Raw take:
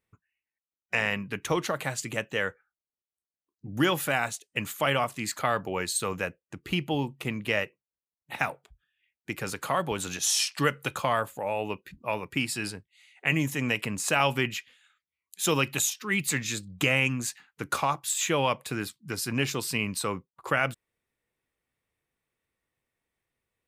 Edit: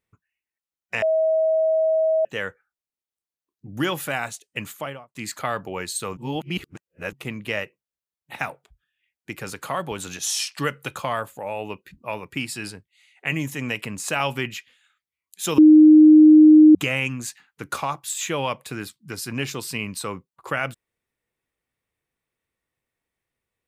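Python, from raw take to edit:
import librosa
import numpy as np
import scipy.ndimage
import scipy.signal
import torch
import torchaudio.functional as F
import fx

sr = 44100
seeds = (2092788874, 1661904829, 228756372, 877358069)

y = fx.studio_fade_out(x, sr, start_s=4.63, length_s=0.52)
y = fx.edit(y, sr, fx.bleep(start_s=1.02, length_s=1.23, hz=639.0, db=-16.5),
    fx.reverse_span(start_s=6.17, length_s=0.96),
    fx.bleep(start_s=15.58, length_s=1.17, hz=308.0, db=-6.5), tone=tone)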